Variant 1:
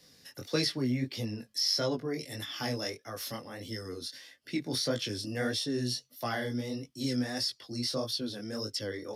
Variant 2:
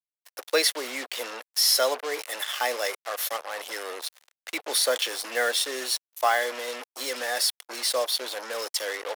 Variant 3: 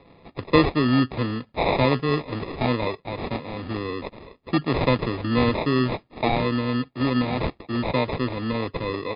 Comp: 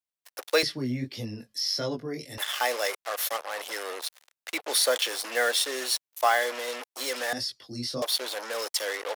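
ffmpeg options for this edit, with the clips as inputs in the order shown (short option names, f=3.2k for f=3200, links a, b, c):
-filter_complex "[0:a]asplit=2[a][b];[1:a]asplit=3[c][d][e];[c]atrim=end=0.632[f];[a]atrim=start=0.628:end=2.382[g];[d]atrim=start=2.378:end=7.332[h];[b]atrim=start=7.328:end=8.022[i];[e]atrim=start=8.018[j];[f][g]acrossfade=d=0.004:c1=hsin:c2=hsin[k];[k][h]acrossfade=d=0.004:c1=hsin:c2=hsin[l];[l][i]acrossfade=d=0.004:c1=hsin:c2=hsin[m];[m][j]acrossfade=d=0.004:c1=hsin:c2=hsin"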